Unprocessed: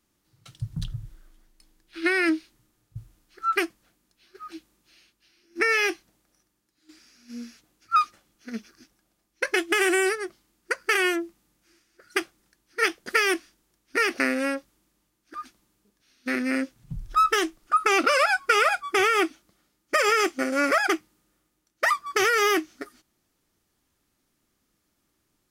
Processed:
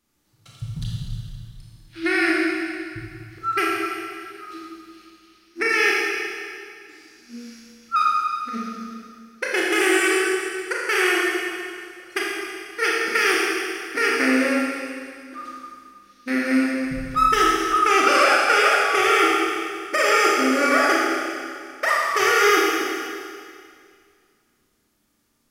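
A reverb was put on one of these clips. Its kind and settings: Schroeder reverb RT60 2.2 s, combs from 27 ms, DRR -4.5 dB; gain -1 dB

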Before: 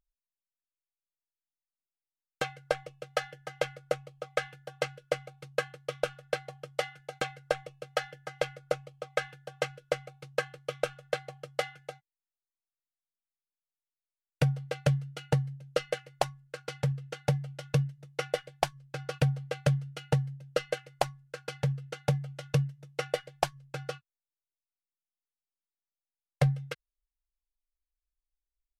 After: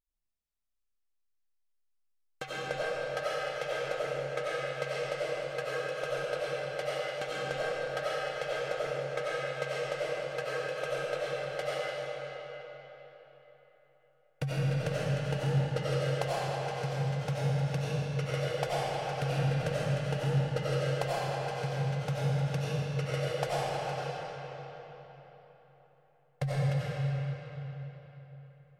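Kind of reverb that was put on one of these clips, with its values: digital reverb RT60 4.1 s, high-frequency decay 0.75×, pre-delay 50 ms, DRR -9.5 dB; gain -8.5 dB

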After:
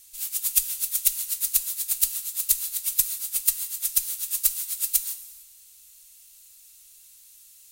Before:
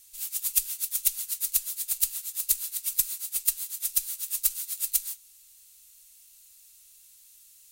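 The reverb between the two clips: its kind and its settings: non-linear reverb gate 0.49 s falling, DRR 11.5 dB; gain +3 dB

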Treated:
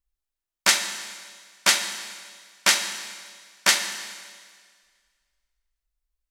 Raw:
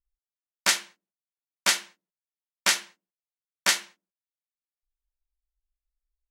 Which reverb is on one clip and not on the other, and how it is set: Schroeder reverb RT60 1.8 s, combs from 26 ms, DRR 7.5 dB; gain +3.5 dB

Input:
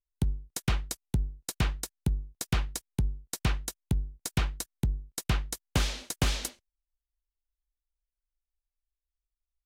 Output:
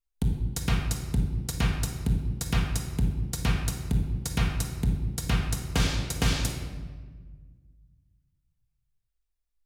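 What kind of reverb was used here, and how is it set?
shoebox room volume 1500 m³, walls mixed, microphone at 1.7 m

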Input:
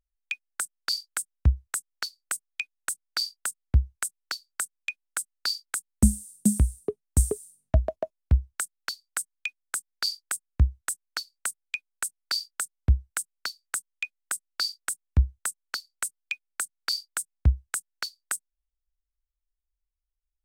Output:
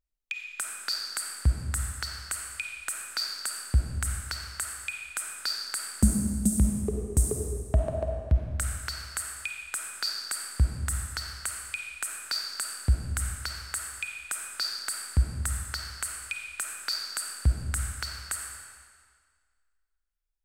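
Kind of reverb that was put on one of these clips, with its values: digital reverb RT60 1.8 s, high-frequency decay 0.95×, pre-delay 10 ms, DRR 1 dB; gain -3 dB

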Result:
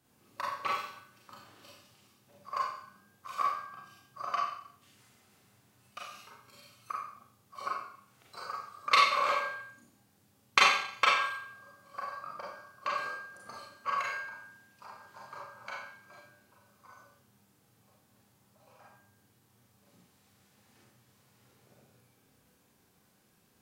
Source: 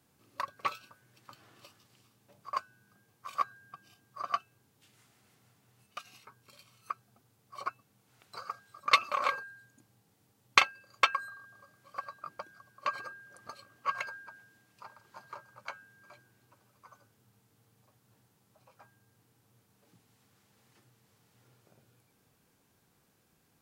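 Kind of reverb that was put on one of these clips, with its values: Schroeder reverb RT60 0.63 s, combs from 30 ms, DRR -4.5 dB; gain -3 dB

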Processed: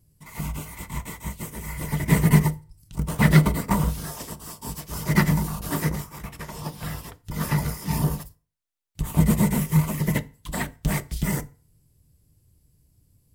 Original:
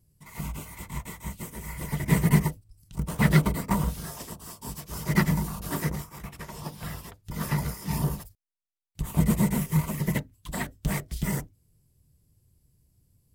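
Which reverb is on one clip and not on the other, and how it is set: FDN reverb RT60 0.39 s, low-frequency decay 1×, high-frequency decay 0.8×, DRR 14 dB; gain +3.5 dB

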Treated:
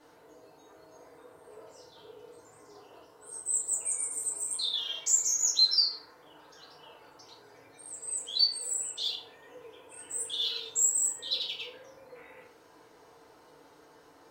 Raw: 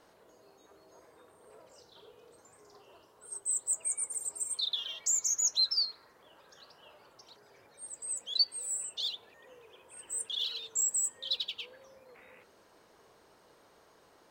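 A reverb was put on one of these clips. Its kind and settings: FDN reverb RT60 0.6 s, low-frequency decay 0.75×, high-frequency decay 0.6×, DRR -7 dB; gain -3.5 dB

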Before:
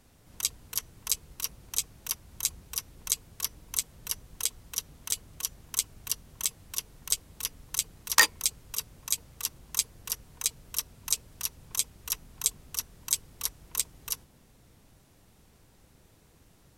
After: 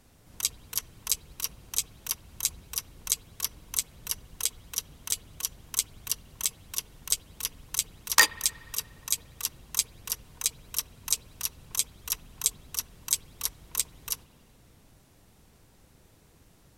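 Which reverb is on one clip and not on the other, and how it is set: spring tank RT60 2.3 s, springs 55 ms, chirp 45 ms, DRR 19 dB; gain +1 dB

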